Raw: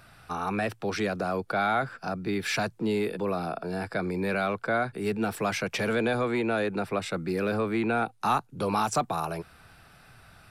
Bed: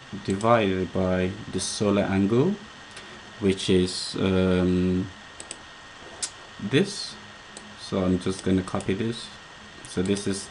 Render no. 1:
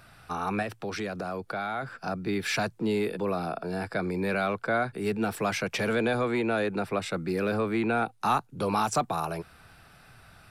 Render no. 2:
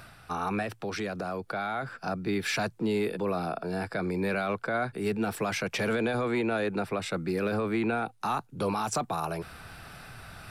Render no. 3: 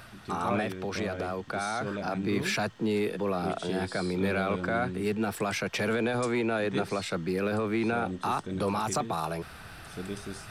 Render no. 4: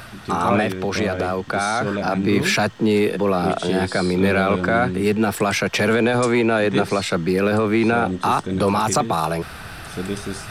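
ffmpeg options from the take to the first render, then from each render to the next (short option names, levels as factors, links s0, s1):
-filter_complex "[0:a]asettb=1/sr,asplit=3[s0][s1][s2];[s0]atrim=end=0.624[s3];[s1]atrim=start=0.62:end=1.99,asetpts=PTS-STARTPTS,afade=t=in:d=0.004:c=qsin,afade=t=out:st=1.366:d=0.004:c=qsin,acompressor=threshold=0.0251:ratio=2:attack=3.2:release=140:knee=1:detection=peak[s4];[s2]atrim=start=1.986[s5];[s3][s4]acrossfade=d=0.004:c1=hsin:c2=qsin[s6];[s6][s5]acrossfade=d=0.004:c1=qsin:c2=hsin"
-af "alimiter=limit=0.1:level=0:latency=1:release=22,areverse,acompressor=mode=upward:threshold=0.0158:ratio=2.5,areverse"
-filter_complex "[1:a]volume=0.224[s0];[0:a][s0]amix=inputs=2:normalize=0"
-af "volume=3.35"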